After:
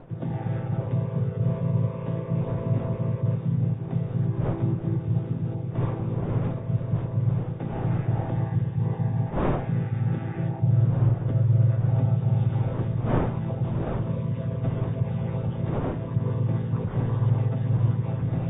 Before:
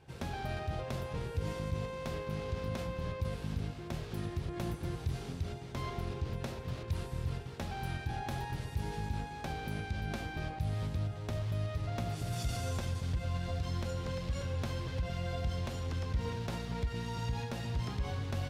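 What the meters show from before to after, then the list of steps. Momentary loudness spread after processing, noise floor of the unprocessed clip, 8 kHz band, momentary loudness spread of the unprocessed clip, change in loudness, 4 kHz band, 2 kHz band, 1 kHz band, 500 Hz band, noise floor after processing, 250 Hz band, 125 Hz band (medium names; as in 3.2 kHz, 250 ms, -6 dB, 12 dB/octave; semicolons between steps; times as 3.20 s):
6 LU, -44 dBFS, under -30 dB, 4 LU, +11.5 dB, no reading, -0.5 dB, +4.5 dB, +8.0 dB, -34 dBFS, +13.0 dB, +13.5 dB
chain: vocoder on a held chord minor triad, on A2; wind noise 620 Hz -52 dBFS; tilt EQ -1.5 dB/octave; in parallel at -8 dB: saturation -31 dBFS, distortion -12 dB; on the sum: trim +8 dB; AAC 16 kbps 32 kHz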